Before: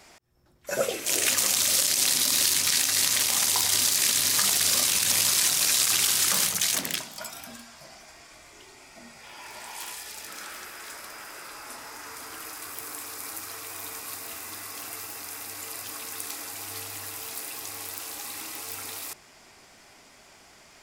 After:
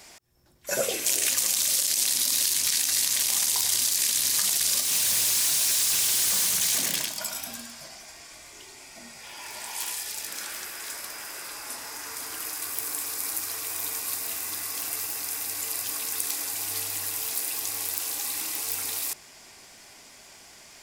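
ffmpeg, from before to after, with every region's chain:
-filter_complex "[0:a]asettb=1/sr,asplit=3[a][b][c];[a]atrim=end=4.814[d];[b]atrim=start=4.81:end=7.88,asetpts=PTS-STARTPTS,afade=t=in:d=0.004:c=qsin,afade=t=out:st=3.066:d=0.004:c=qsin,aecho=1:1:102:0.501,atrim=end_sample=135387,asoftclip=type=hard:threshold=-25dB[e];[c]atrim=start=7.876[f];[d][e]acrossfade=d=0.004:c1=hsin:c2=qsin[g];[g][f]acrossfade=d=0.004:c1=qsin:c2=hsin,highshelf=f=3.4k:g=8,bandreject=f=1.3k:w=14,acompressor=threshold=-21dB:ratio=6"

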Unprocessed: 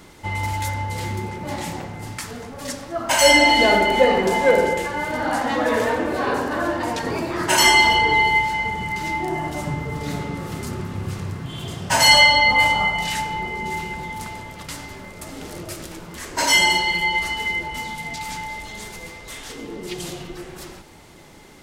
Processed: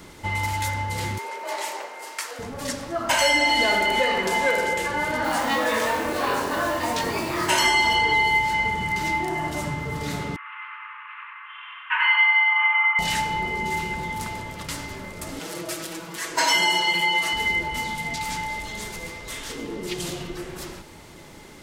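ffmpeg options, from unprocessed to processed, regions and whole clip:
-filter_complex "[0:a]asettb=1/sr,asplit=3[a][b][c];[a]atrim=end=1.184[d];[b]atrim=start=1.18:end=2.39,asetpts=PTS-STARTPTS,afade=t=in:d=0.004:c=qsin,afade=t=out:st=1.206:d=0.004:c=qsin,highpass=f=440:w=0.5412,highpass=f=440:w=1.3066,bandreject=f=3.5k:w=24,afreqshift=34[e];[c]atrim=start=2.386[f];[d][e]acrossfade=d=0.004:c1=hsin:c2=qsin[g];[g][f]acrossfade=d=0.004:c1=qsin:c2=hsin,asettb=1/sr,asplit=3[h][i][j];[h]atrim=end=5.244[k];[i]atrim=start=5.24:end=7.59,asetpts=PTS-STARTPTS,afade=t=in:d=0.004:c=qsin,afade=t=out:st=2.346:d=0.004:c=qsin,equalizer=f=1.6k:w=4.4:g=-5,asplit=2[l][m];[m]adelay=22,volume=-3.5dB[n];[l][n]amix=inputs=2:normalize=0,atrim=end_sample=103635,acrusher=bits=5:mix=0:aa=0.5[o];[j]atrim=start=7.586[p];[k][o]acrossfade=d=0.004:c1=hsin:c2=qsin[q];[q][p]acrossfade=d=0.004:c1=qsin:c2=hsin,asettb=1/sr,asplit=3[r][s][t];[r]atrim=end=10.364[u];[s]atrim=start=10.36:end=12.99,asetpts=PTS-STARTPTS,afade=t=in:d=0.004:c=qsin,afade=t=out:st=2.626:d=0.004:c=qsin,asuperpass=centerf=1700:order=12:qfactor=0.92,aecho=1:1:94|188|282|376|470|564:0.708|0.347|0.17|0.0833|0.0408|0.02,atrim=end_sample=115983[v];[t]atrim=start=12.986[w];[u][v]acrossfade=d=0.004:c1=hsin:c2=qsin[x];[x][w]acrossfade=d=0.004:c1=qsin:c2=hsin,asettb=1/sr,asplit=3[y][z][aa];[y]atrim=end=15.394[ab];[z]atrim=start=15.39:end=17.33,asetpts=PTS-STARTPTS,afade=t=in:d=0.004:c=qsin,afade=t=out:st=1.936:d=0.004:c=qsin,highpass=f=450:p=1,aecho=1:1:6.1:0.9,atrim=end_sample=85554[ac];[aa]atrim=start=17.326[ad];[ab][ac]acrossfade=d=0.004:c1=hsin:c2=qsin[ae];[ae][ad]acrossfade=d=0.004:c1=qsin:c2=hsin,bandreject=f=760:w=15,acrossover=split=870|2000|4800[af][ag][ah][ai];[af]acompressor=threshold=-29dB:ratio=4[aj];[ag]acompressor=threshold=-25dB:ratio=4[ak];[ah]acompressor=threshold=-27dB:ratio=4[al];[ai]acompressor=threshold=-33dB:ratio=4[am];[aj][ak][al][am]amix=inputs=4:normalize=0,volume=1.5dB"

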